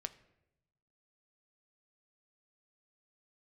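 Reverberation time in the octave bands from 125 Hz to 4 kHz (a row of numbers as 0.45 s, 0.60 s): 1.5 s, 1.1 s, 1.0 s, 0.80 s, 0.75 s, 0.55 s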